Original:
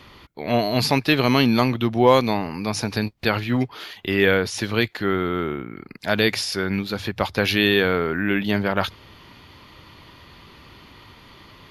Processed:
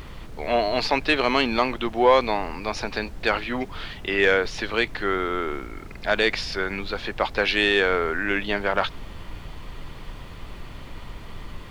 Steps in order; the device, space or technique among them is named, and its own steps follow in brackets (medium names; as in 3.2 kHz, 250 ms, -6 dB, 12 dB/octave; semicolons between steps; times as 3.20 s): aircraft cabin announcement (band-pass 420–3700 Hz; saturation -7.5 dBFS, distortion -22 dB; brown noise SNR 10 dB); trim +1.5 dB